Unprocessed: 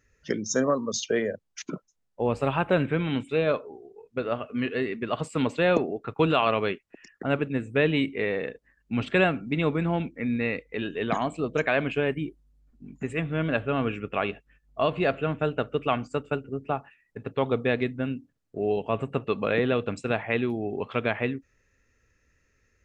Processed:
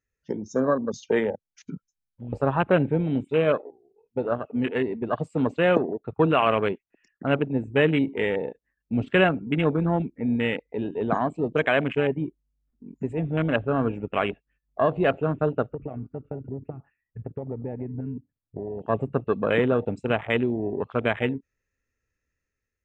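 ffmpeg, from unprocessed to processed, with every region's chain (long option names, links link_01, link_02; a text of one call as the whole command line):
ffmpeg -i in.wav -filter_complex "[0:a]asettb=1/sr,asplit=3[link_01][link_02][link_03];[link_01]atrim=end=1.654[link_04];[link_02]atrim=start=1.65:end=2.33,asetpts=PTS-STARTPTS,afade=type=in:duration=0.004:curve=qsin,afade=type=out:start_time=0.676:duration=0.004:curve=qsin,aecho=1:1:1.3:0.82,atrim=end_sample=29988,acompressor=threshold=-30dB:ratio=6:attack=3.2:release=140:knee=1:detection=peak,asuperstop=centerf=700:order=4:qfactor=0.77[link_05];[link_03]atrim=start=2.326[link_06];[link_04][link_05]acrossfade=duration=0.004:curve1=hsin:curve2=qsin[link_07];[link_07][link_06]acrossfade=duration=0.004:curve1=qsin:curve2=hsin,asettb=1/sr,asplit=3[link_08][link_09][link_10];[link_08]atrim=end=15.724[link_11];[link_09]atrim=start=15.72:end=18.82,asetpts=PTS-STARTPTS,afade=type=in:duration=0.004:curve=qsin,afade=type=out:start_time=3.096:duration=0.004:curve=qsin,lowpass=frequency=2100:width=0.5412,lowpass=frequency=2100:width=1.3066,equalizer=frequency=67:width=0.52:gain=9,acompressor=threshold=-30dB:ratio=16:attack=3.2:release=140:knee=1:detection=peak[link_12];[link_10]atrim=start=18.816[link_13];[link_11][link_12]acrossfade=duration=0.004:curve1=hsin:curve2=qsin[link_14];[link_14][link_13]acrossfade=duration=0.004:curve1=qsin:curve2=hsin,afwtdn=0.0316,dynaudnorm=framelen=170:gausssize=7:maxgain=5dB,volume=-2dB" out.wav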